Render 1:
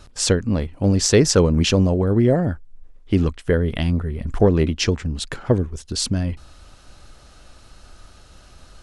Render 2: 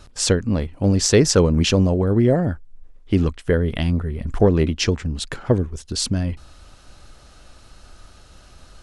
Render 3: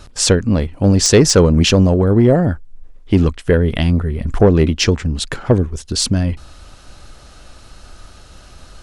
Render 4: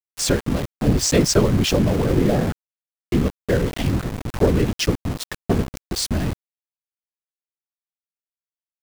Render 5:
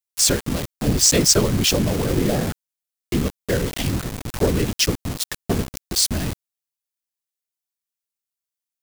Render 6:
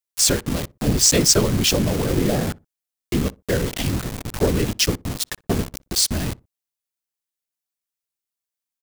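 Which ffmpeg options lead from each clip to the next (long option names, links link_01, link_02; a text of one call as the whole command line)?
ffmpeg -i in.wav -af anull out.wav
ffmpeg -i in.wav -af "asoftclip=type=tanh:threshold=-6.5dB,volume=6dB" out.wav
ffmpeg -i in.wav -af "afftfilt=real='hypot(re,im)*cos(2*PI*random(0))':imag='hypot(re,im)*sin(2*PI*random(1))':win_size=512:overlap=0.75,aeval=exprs='val(0)*gte(abs(val(0)),0.0562)':channel_layout=same" out.wav
ffmpeg -i in.wav -af "highshelf=frequency=3300:gain=11.5,volume=-2.5dB" out.wav
ffmpeg -i in.wav -filter_complex "[0:a]asplit=2[link_01][link_02];[link_02]adelay=61,lowpass=frequency=870:poles=1,volume=-21.5dB,asplit=2[link_03][link_04];[link_04]adelay=61,lowpass=frequency=870:poles=1,volume=0.25[link_05];[link_01][link_03][link_05]amix=inputs=3:normalize=0" out.wav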